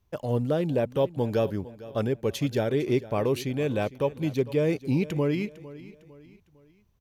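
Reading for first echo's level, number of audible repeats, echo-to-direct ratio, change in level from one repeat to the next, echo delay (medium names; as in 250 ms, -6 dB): -17.5 dB, 3, -16.5 dB, -7.5 dB, 454 ms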